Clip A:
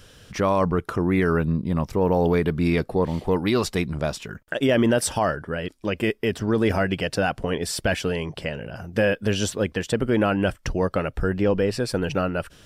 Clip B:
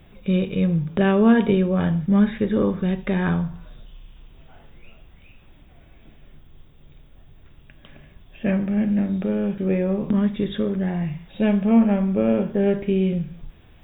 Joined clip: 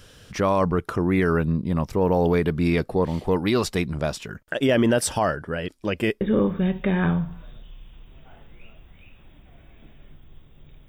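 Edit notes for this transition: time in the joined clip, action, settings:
clip A
6.21 s: go over to clip B from 2.44 s

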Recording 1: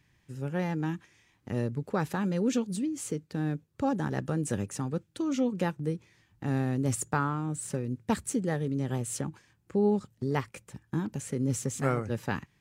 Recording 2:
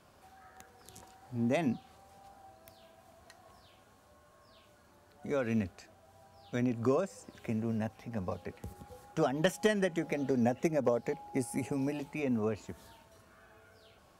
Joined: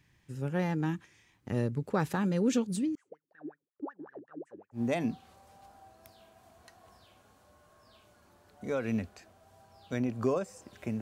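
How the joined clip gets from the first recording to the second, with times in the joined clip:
recording 1
2.95–4.82 s: wah-wah 5.4 Hz 280–1900 Hz, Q 18
4.77 s: go over to recording 2 from 1.39 s, crossfade 0.10 s

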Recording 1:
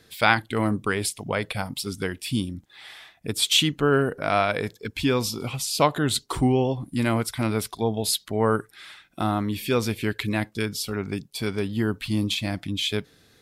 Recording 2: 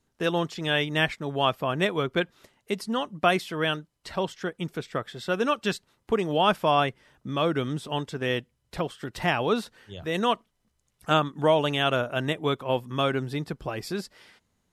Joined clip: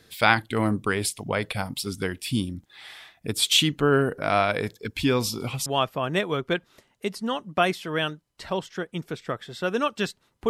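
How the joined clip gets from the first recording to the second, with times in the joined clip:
recording 1
5.66 s: go over to recording 2 from 1.32 s

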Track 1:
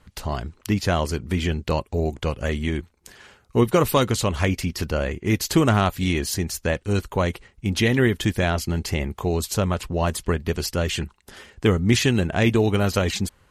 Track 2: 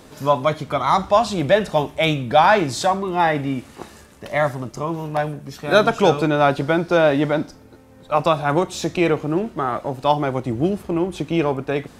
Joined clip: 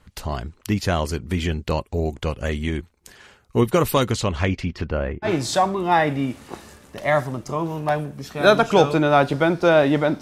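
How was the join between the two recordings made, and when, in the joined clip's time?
track 1
4.13–5.34 s: low-pass 7.9 kHz -> 1.2 kHz
5.28 s: go over to track 2 from 2.56 s, crossfade 0.12 s

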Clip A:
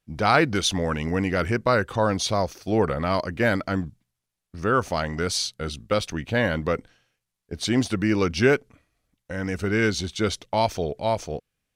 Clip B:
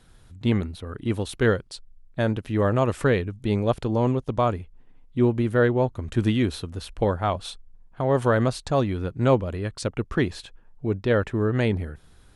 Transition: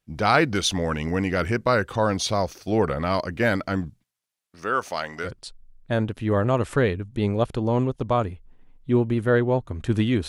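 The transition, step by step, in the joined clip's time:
clip A
4.04–5.31 s: high-pass 660 Hz 6 dB/octave
5.27 s: go over to clip B from 1.55 s, crossfade 0.08 s

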